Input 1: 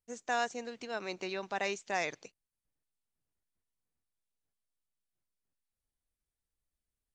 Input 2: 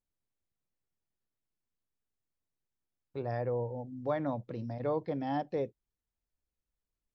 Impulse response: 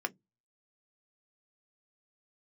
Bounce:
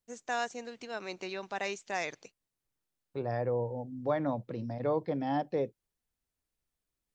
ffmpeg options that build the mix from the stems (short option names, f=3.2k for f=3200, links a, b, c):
-filter_complex "[0:a]volume=-1dB[a];[1:a]highpass=100,volume=2dB[b];[a][b]amix=inputs=2:normalize=0"